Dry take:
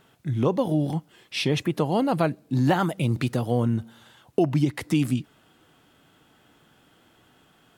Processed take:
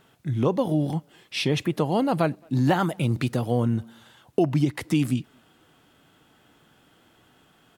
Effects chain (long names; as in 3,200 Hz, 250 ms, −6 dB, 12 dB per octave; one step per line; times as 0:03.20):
far-end echo of a speakerphone 220 ms, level −29 dB